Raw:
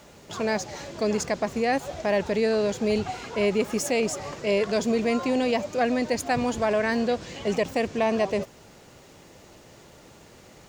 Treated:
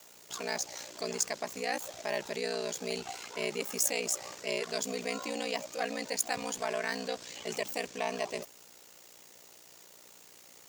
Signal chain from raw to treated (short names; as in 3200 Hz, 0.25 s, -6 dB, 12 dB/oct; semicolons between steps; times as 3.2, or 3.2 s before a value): ring modulator 30 Hz; RIAA curve recording; gain -6 dB